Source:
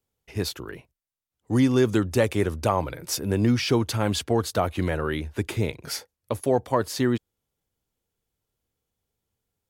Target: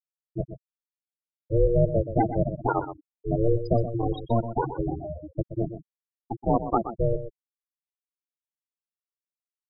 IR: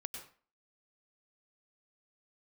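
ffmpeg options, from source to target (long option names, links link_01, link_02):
-filter_complex "[0:a]asplit=2[link_01][link_02];[1:a]atrim=start_sample=2205,asetrate=34398,aresample=44100,highshelf=frequency=2900:gain=6.5[link_03];[link_02][link_03]afir=irnorm=-1:irlink=0,volume=-15.5dB[link_04];[link_01][link_04]amix=inputs=2:normalize=0,aeval=exprs='val(0)*sin(2*PI*230*n/s)':channel_layout=same,afftfilt=real='re*gte(hypot(re,im),0.178)':imag='im*gte(hypot(re,im),0.178)':win_size=1024:overlap=0.75,aecho=1:1:125:0.282,volume=1.5dB"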